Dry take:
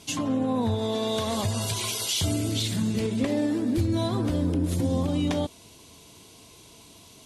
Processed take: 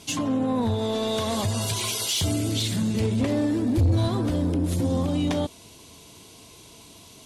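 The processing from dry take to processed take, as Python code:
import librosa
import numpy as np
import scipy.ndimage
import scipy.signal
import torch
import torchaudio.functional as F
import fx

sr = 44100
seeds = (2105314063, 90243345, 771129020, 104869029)

y = fx.peak_eq(x, sr, hz=85.0, db=13.5, octaves=0.72, at=(3.0, 4.08))
y = 10.0 ** (-18.5 / 20.0) * np.tanh(y / 10.0 ** (-18.5 / 20.0))
y = y * 10.0 ** (2.5 / 20.0)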